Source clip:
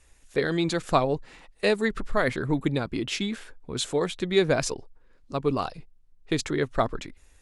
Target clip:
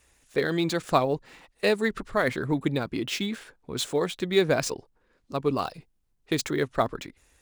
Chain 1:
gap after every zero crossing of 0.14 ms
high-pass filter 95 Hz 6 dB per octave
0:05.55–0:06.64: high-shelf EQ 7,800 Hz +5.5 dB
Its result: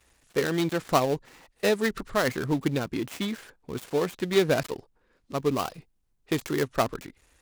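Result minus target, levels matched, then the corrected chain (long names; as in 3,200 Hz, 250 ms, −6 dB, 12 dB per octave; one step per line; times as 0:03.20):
gap after every zero crossing: distortion +15 dB
gap after every zero crossing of 0.03 ms
high-pass filter 95 Hz 6 dB per octave
0:05.55–0:06.64: high-shelf EQ 7,800 Hz +5.5 dB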